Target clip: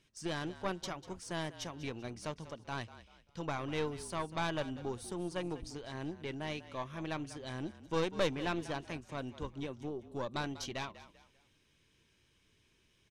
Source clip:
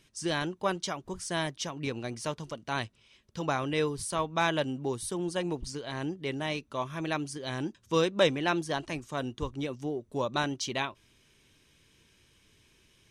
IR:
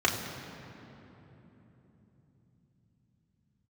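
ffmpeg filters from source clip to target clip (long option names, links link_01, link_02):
-filter_complex "[0:a]highshelf=frequency=9800:gain=-9,aeval=exprs='(tanh(11.2*val(0)+0.65)-tanh(0.65))/11.2':channel_layout=same,asplit=4[link_01][link_02][link_03][link_04];[link_02]adelay=194,afreqshift=-41,volume=-15dB[link_05];[link_03]adelay=388,afreqshift=-82,volume=-24.1dB[link_06];[link_04]adelay=582,afreqshift=-123,volume=-33.2dB[link_07];[link_01][link_05][link_06][link_07]amix=inputs=4:normalize=0,volume=-3.5dB"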